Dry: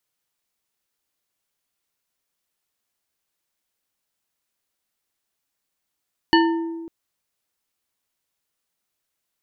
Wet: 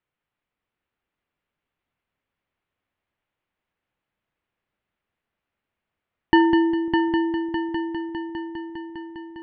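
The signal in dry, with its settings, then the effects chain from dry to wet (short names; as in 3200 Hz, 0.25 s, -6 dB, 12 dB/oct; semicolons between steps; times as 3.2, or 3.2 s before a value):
glass hit bar, length 0.55 s, lowest mode 331 Hz, modes 5, decay 1.60 s, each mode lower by 2 dB, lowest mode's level -13 dB
LPF 2800 Hz 24 dB/oct; low shelf 260 Hz +6 dB; on a send: multi-head echo 0.202 s, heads first and third, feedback 71%, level -6.5 dB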